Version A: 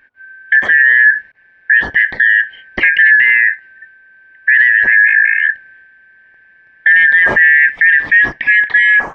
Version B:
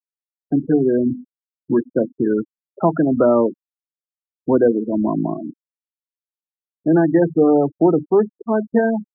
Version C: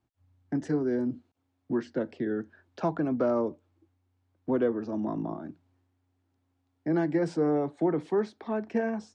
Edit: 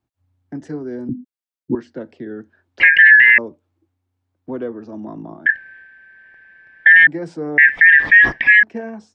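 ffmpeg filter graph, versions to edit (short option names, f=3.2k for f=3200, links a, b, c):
-filter_complex "[0:a]asplit=3[a][b][c];[2:a]asplit=5[d][e][f][g][h];[d]atrim=end=1.092[i];[1:a]atrim=start=1.088:end=1.752[j];[e]atrim=start=1.748:end=2.802[k];[a]atrim=start=2.798:end=3.382[l];[f]atrim=start=3.378:end=5.462[m];[b]atrim=start=5.458:end=7.072[n];[g]atrim=start=7.068:end=7.582[o];[c]atrim=start=7.578:end=8.632[p];[h]atrim=start=8.628[q];[i][j]acrossfade=d=0.004:c1=hsin:c2=hsin[r];[r][k]acrossfade=d=0.004:c1=hsin:c2=hsin[s];[s][l]acrossfade=d=0.004:c1=hsin:c2=hsin[t];[t][m]acrossfade=d=0.004:c1=hsin:c2=hsin[u];[u][n]acrossfade=d=0.004:c1=hsin:c2=hsin[v];[v][o]acrossfade=d=0.004:c1=hsin:c2=hsin[w];[w][p]acrossfade=d=0.004:c1=hsin:c2=hsin[x];[x][q]acrossfade=d=0.004:c1=hsin:c2=hsin"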